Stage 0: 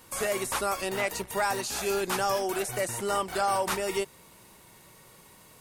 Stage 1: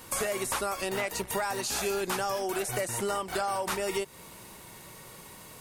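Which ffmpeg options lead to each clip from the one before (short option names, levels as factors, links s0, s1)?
-af "acompressor=threshold=0.02:ratio=6,volume=2"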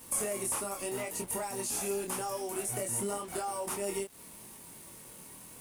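-af "equalizer=f=250:t=o:w=0.67:g=7,equalizer=f=1600:t=o:w=0.67:g=-6,equalizer=f=4000:t=o:w=0.67:g=-7,equalizer=f=10000:t=o:w=0.67:g=11,acrusher=bits=6:mix=0:aa=0.5,flanger=delay=22.5:depth=3.5:speed=0.86,volume=0.708"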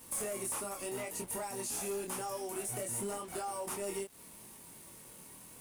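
-af "asoftclip=type=hard:threshold=0.0335,volume=0.708"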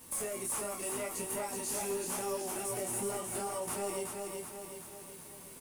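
-filter_complex "[0:a]asplit=2[s0][s1];[s1]adelay=12,volume=0.266[s2];[s0][s2]amix=inputs=2:normalize=0,aecho=1:1:375|750|1125|1500|1875|2250|2625:0.631|0.334|0.177|0.0939|0.0498|0.0264|0.014"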